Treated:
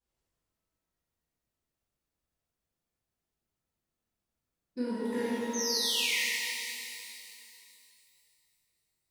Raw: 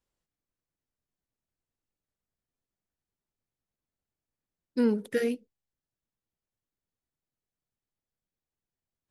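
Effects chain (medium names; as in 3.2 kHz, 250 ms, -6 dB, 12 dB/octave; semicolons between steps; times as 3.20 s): compression, threshold -31 dBFS, peak gain reduction 11 dB; painted sound fall, 5.53–6.20 s, 1.8–6.5 kHz -33 dBFS; pitch-shifted reverb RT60 2.6 s, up +12 st, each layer -8 dB, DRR -11 dB; trim -8 dB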